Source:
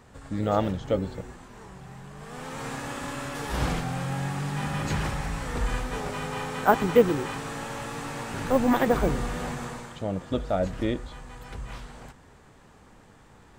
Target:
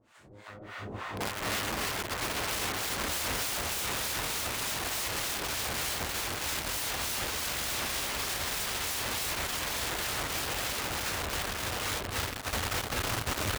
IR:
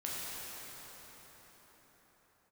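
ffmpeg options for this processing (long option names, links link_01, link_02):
-filter_complex "[0:a]bandreject=frequency=109.3:width_type=h:width=4,bandreject=frequency=218.6:width_type=h:width=4,bandreject=frequency=327.9:width_type=h:width=4,bandreject=frequency=437.2:width_type=h:width=4,bandreject=frequency=546.5:width_type=h:width=4,bandreject=frequency=655.8:width_type=h:width=4,bandreject=frequency=765.1:width_type=h:width=4,bandreject=frequency=874.4:width_type=h:width=4,bandreject=frequency=983.7:width_type=h:width=4,bandreject=frequency=1093:width_type=h:width=4,bandreject=frequency=1202.3:width_type=h:width=4,bandreject=frequency=1311.6:width_type=h:width=4,bandreject=frequency=1420.9:width_type=h:width=4,bandreject=frequency=1530.2:width_type=h:width=4,bandreject=frequency=1639.5:width_type=h:width=4,bandreject=frequency=1748.8:width_type=h:width=4,bandreject=frequency=1858.1:width_type=h:width=4,bandreject=frequency=1967.4:width_type=h:width=4,bandreject=frequency=2076.7:width_type=h:width=4,bandreject=frequency=2186:width_type=h:width=4,bandreject=frequency=2295.3:width_type=h:width=4,bandreject=frequency=2404.6:width_type=h:width=4,bandreject=frequency=2513.9:width_type=h:width=4,bandreject=frequency=2623.2:width_type=h:width=4,bandreject=frequency=2732.5:width_type=h:width=4,bandreject=frequency=2841.8:width_type=h:width=4,bandreject=frequency=2951.1:width_type=h:width=4,bandreject=frequency=3060.4:width_type=h:width=4,bandreject=frequency=3169.7:width_type=h:width=4,bandreject=frequency=3279:width_type=h:width=4,bandreject=frequency=3388.3:width_type=h:width=4,bandreject=frequency=3497.6:width_type=h:width=4,bandreject=frequency=3606.9:width_type=h:width=4,bandreject=frequency=3716.2:width_type=h:width=4,bandreject=frequency=3825.5:width_type=h:width=4,bandreject=frequency=3934.8:width_type=h:width=4,bandreject=frequency=4044.1:width_type=h:width=4,bandreject=frequency=4153.4:width_type=h:width=4,bandreject=frequency=4262.7:width_type=h:width=4,aeval=exprs='abs(val(0))':channel_layout=same[link_01];[1:a]atrim=start_sample=2205[link_02];[link_01][link_02]afir=irnorm=-1:irlink=0,acrossover=split=730[link_03][link_04];[link_03]aeval=exprs='val(0)*(1-1/2+1/2*cos(2*PI*3.3*n/s))':channel_layout=same[link_05];[link_04]aeval=exprs='val(0)*(1-1/2-1/2*cos(2*PI*3.3*n/s))':channel_layout=same[link_06];[link_05][link_06]amix=inputs=2:normalize=0,aecho=1:1:805|1610|2415|3220|4025:0.708|0.29|0.119|0.0488|0.02,acompressor=threshold=-48dB:ratio=2,equalizer=frequency=2700:width_type=o:width=2:gain=3.5,dynaudnorm=framelen=270:gausssize=11:maxgain=15.5dB,aeval=exprs='(mod(21.1*val(0)+1,2)-1)/21.1':channel_layout=same,asubboost=boost=4:cutoff=82,aeval=exprs='(tanh(12.6*val(0)+0.45)-tanh(0.45))/12.6':channel_layout=same,highpass=59"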